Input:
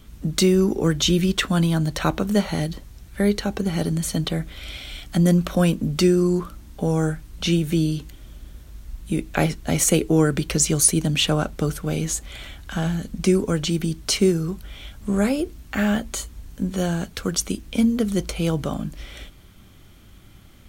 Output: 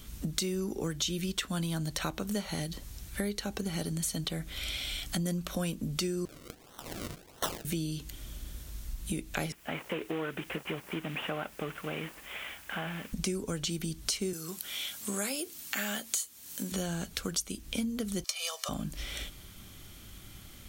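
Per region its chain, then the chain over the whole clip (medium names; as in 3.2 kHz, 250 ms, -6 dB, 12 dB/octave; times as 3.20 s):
6.25–7.65 s: high-pass 1.4 kHz 24 dB/octave + peaking EQ 4.1 kHz +10 dB 1.1 oct + decimation with a swept rate 36× 1.5 Hz
9.52–13.13 s: CVSD coder 16 kbps + high-pass 590 Hz 6 dB/octave + word length cut 10-bit, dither triangular
14.33–16.72 s: high-pass 160 Hz + tilt EQ +2.5 dB/octave
18.24–18.69 s: high-pass 750 Hz 24 dB/octave + peaking EQ 5.2 kHz +7.5 dB 0.83 oct + comb 1.7 ms, depth 94%
whole clip: treble shelf 2.9 kHz +10 dB; compression 4:1, threshold -30 dBFS; trim -2.5 dB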